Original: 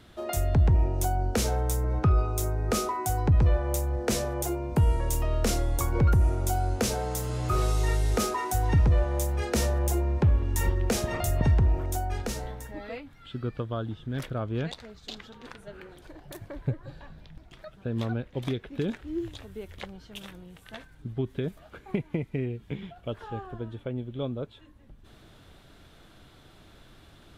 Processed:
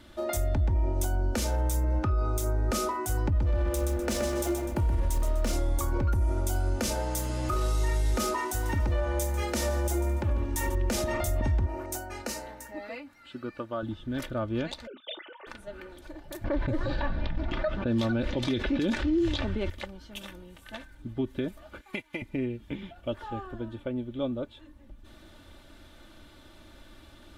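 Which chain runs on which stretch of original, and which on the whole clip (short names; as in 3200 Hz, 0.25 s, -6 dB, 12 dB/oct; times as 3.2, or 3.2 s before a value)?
3.38–5.53 backlash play -33.5 dBFS + feedback echo 0.125 s, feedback 35%, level -6.5 dB
8.48–10.75 low shelf 140 Hz -7.5 dB + multi-head echo 72 ms, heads first and second, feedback 41%, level -18 dB
11.66–13.83 HPF 370 Hz 6 dB/oct + notch 3400 Hz, Q 5.1
14.87–15.47 sine-wave speech + doubler 33 ms -14 dB
16.44–19.7 low-pass opened by the level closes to 1600 Hz, open at -25 dBFS + bell 4900 Hz +5 dB 1.1 oct + fast leveller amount 70%
21.81–22.22 tilt shelf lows -10 dB, about 860 Hz + upward expander, over -50 dBFS
whole clip: comb 3.4 ms, depth 64%; limiter -19.5 dBFS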